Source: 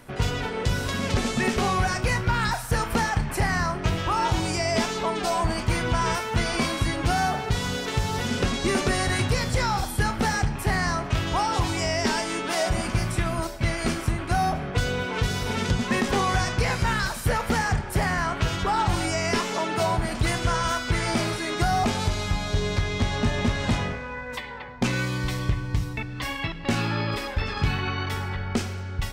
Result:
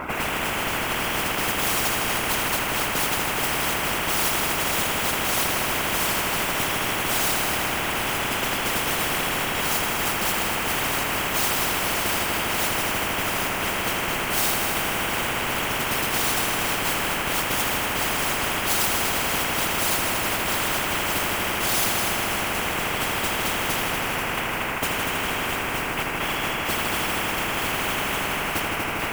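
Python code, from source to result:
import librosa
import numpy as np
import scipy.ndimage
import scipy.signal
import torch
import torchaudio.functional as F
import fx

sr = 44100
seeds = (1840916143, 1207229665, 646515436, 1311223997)

y = fx.cvsd(x, sr, bps=16000)
y = scipy.signal.sosfilt(scipy.signal.butter(4, 1800.0, 'lowpass', fs=sr, output='sos'), y)
y = fx.tilt_eq(y, sr, slope=3.0)
y = fx.fixed_phaser(y, sr, hz=470.0, stages=6)
y = fx.mod_noise(y, sr, seeds[0], snr_db=30)
y = fx.notch_comb(y, sr, f0_hz=590.0)
y = fx.whisperise(y, sr, seeds[1])
y = fx.echo_heads(y, sr, ms=80, heads='all three', feedback_pct=67, wet_db=-10.5)
y = fx.spectral_comp(y, sr, ratio=10.0)
y = F.gain(torch.from_numpy(y), 5.5).numpy()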